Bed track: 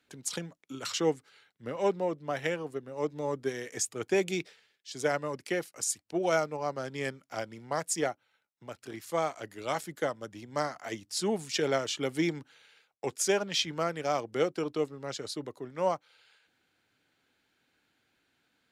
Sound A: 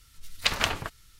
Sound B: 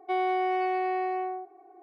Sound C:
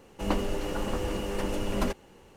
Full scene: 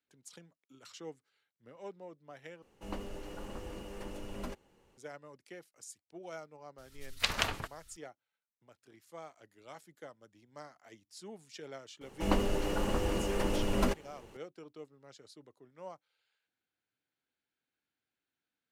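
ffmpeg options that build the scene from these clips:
ffmpeg -i bed.wav -i cue0.wav -i cue1.wav -i cue2.wav -filter_complex "[3:a]asplit=2[link_01][link_02];[0:a]volume=-18dB,asplit=2[link_03][link_04];[link_03]atrim=end=2.624[link_05];[link_01]atrim=end=2.36,asetpts=PTS-STARTPTS,volume=-13dB[link_06];[link_04]atrim=start=4.976[link_07];[1:a]atrim=end=1.19,asetpts=PTS-STARTPTS,volume=-5.5dB,afade=type=in:duration=0.004:curve=hsin,afade=type=out:start_time=1.186:duration=0.004:curve=hsin,adelay=6780[link_08];[link_02]atrim=end=2.36,asetpts=PTS-STARTPTS,volume=-1dB,afade=type=in:duration=0.004:curve=hsin,afade=type=out:start_time=2.356:duration=0.004:curve=hsin,adelay=12010[link_09];[link_05][link_06]acrossfade=duration=0.004:curve1=hsin:curve2=hsin[link_10];[link_10][link_07]acrossfade=duration=0.004:curve1=hsin:curve2=hsin[link_11];[link_11][link_08][link_09]amix=inputs=3:normalize=0" out.wav

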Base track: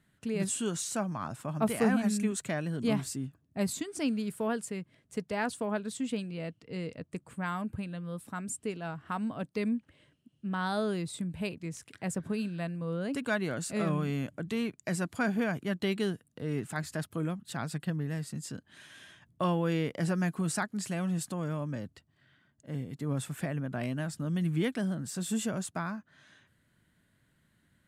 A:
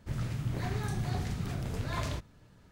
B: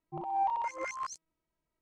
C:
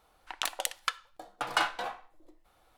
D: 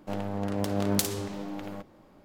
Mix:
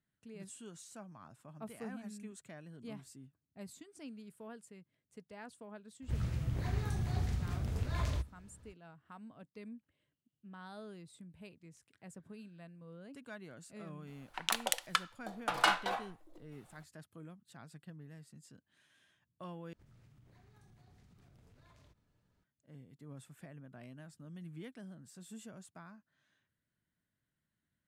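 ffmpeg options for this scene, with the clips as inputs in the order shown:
ffmpeg -i bed.wav -i cue0.wav -i cue1.wav -i cue2.wav -filter_complex "[1:a]asplit=2[link_01][link_02];[0:a]volume=-18dB[link_03];[link_01]equalizer=frequency=68:width_type=o:width=0.67:gain=14[link_04];[link_02]acompressor=threshold=-43dB:ratio=6:attack=3.2:release=140:knee=1:detection=peak[link_05];[link_03]asplit=2[link_06][link_07];[link_06]atrim=end=19.734[link_08];[link_05]atrim=end=2.71,asetpts=PTS-STARTPTS,volume=-17.5dB[link_09];[link_07]atrim=start=22.436[link_10];[link_04]atrim=end=2.71,asetpts=PTS-STARTPTS,volume=-5.5dB,afade=type=in:duration=0.004:curve=hsin,afade=type=out:start_time=2.706:duration=0.004:curve=hsin,adelay=6020[link_11];[3:a]atrim=end=2.77,asetpts=PTS-STARTPTS,volume=-0.5dB,afade=type=in:duration=0.004:curve=hsin,afade=type=out:start_time=2.766:duration=0.004:curve=hsin,adelay=14070[link_12];[link_08][link_09]acrossfade=duration=0.004:curve1=hsin:curve2=hsin[link_13];[link_13][link_10]acrossfade=duration=0.004:curve1=hsin:curve2=hsin[link_14];[link_14][link_11][link_12]amix=inputs=3:normalize=0" out.wav

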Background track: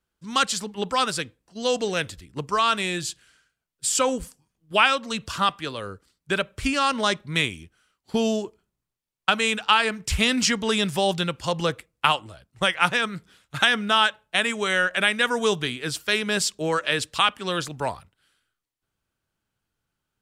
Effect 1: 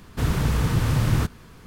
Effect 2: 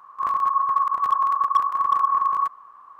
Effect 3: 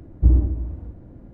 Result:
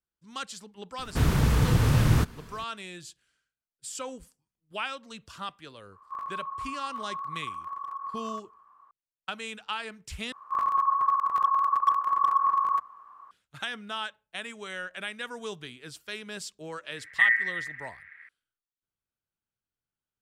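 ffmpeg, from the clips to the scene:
ffmpeg -i bed.wav -i cue0.wav -i cue1.wav -i cue2.wav -filter_complex "[2:a]asplit=2[link_01][link_02];[0:a]volume=-15dB[link_03];[link_01]alimiter=limit=-18.5dB:level=0:latency=1:release=194[link_04];[link_02]bandreject=frequency=60:width_type=h:width=6,bandreject=frequency=120:width_type=h:width=6,bandreject=frequency=180:width_type=h:width=6,bandreject=frequency=240:width_type=h:width=6[link_05];[3:a]aeval=exprs='val(0)*sin(2*PI*1900*n/s)':channel_layout=same[link_06];[link_03]asplit=2[link_07][link_08];[link_07]atrim=end=10.324[link_09];[link_05]atrim=end=2.99,asetpts=PTS-STARTPTS,volume=-3.5dB[link_10];[link_08]atrim=start=13.306[link_11];[1:a]atrim=end=1.66,asetpts=PTS-STARTPTS,volume=-0.5dB,afade=type=in:duration=0.004:curve=hsin,afade=type=out:start_time=1.656:duration=0.004:curve=hsin,adelay=980[link_12];[link_04]atrim=end=2.99,asetpts=PTS-STARTPTS,volume=-11dB,afade=type=in:duration=0.004:curve=hsin,afade=type=out:start_time=2.986:duration=0.004:curve=hsin,adelay=5920[link_13];[link_06]atrim=end=1.33,asetpts=PTS-STARTPTS,volume=-5dB,afade=type=in:duration=0.004:curve=hsin,afade=type=out:start_time=1.326:duration=0.004:curve=hsin,adelay=16960[link_14];[link_09][link_10]acrossfade=duration=0.004:curve1=hsin:curve2=hsin[link_15];[link_15][link_11]acrossfade=duration=0.004:curve1=hsin:curve2=hsin[link_16];[link_16][link_12][link_13][link_14]amix=inputs=4:normalize=0" out.wav

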